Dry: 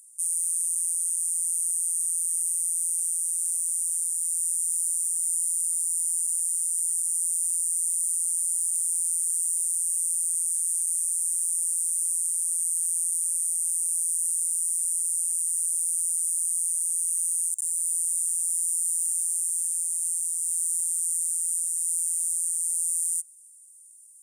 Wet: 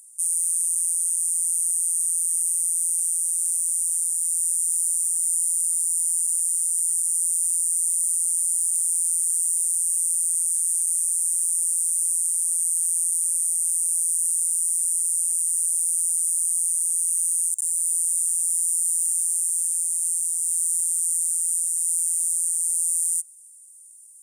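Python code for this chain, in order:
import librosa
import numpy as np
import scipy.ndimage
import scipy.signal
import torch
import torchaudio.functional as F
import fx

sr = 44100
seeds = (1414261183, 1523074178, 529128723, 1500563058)

y = fx.peak_eq(x, sr, hz=810.0, db=11.5, octaves=0.36)
y = y * 10.0 ** (3.5 / 20.0)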